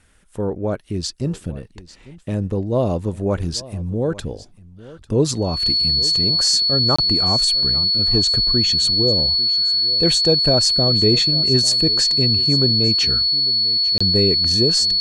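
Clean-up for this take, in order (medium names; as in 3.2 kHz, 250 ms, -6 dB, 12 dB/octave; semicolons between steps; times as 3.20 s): band-stop 4.4 kHz, Q 30; interpolate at 6.96/13.98 s, 25 ms; inverse comb 847 ms -18.5 dB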